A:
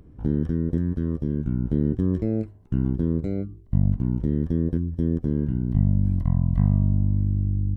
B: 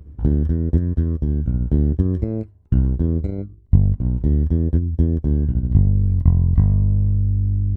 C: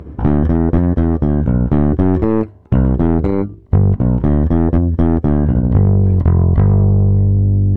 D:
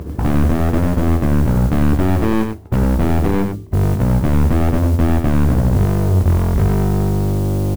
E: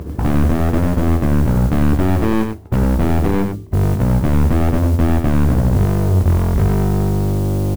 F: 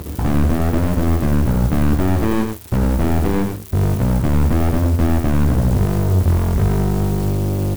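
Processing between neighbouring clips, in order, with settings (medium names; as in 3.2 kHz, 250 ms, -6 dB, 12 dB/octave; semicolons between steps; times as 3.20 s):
peaking EQ 72 Hz +14 dB 0.74 oct; transient shaper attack +6 dB, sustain -7 dB; reverse; upward compressor, threshold -25 dBFS; reverse; trim -1 dB
overdrive pedal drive 32 dB, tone 1 kHz, clips at -1.5 dBFS
saturation -17 dBFS, distortion -9 dB; modulation noise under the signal 27 dB; delay 96 ms -6.5 dB; trim +4.5 dB
no audible change
zero-crossing glitches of -23 dBFS; flange 0.78 Hz, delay 8.3 ms, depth 8.6 ms, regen -82%; in parallel at -8 dB: bit crusher 5-bit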